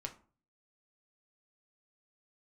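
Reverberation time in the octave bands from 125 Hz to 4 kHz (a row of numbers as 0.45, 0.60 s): 0.65, 0.50, 0.40, 0.40, 0.30, 0.25 s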